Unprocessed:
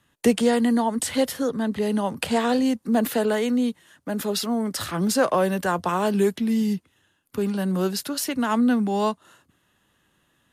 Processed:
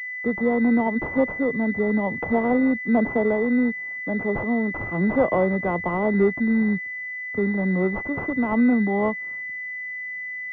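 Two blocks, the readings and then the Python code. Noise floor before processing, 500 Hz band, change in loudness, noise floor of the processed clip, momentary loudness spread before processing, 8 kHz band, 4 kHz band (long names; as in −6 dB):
−68 dBFS, +0.5 dB, +0.5 dB, −33 dBFS, 7 LU, below −35 dB, below −20 dB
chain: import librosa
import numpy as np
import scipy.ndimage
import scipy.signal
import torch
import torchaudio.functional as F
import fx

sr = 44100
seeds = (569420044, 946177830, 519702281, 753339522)

y = fx.fade_in_head(x, sr, length_s=0.68)
y = fx.pwm(y, sr, carrier_hz=2000.0)
y = y * librosa.db_to_amplitude(1.5)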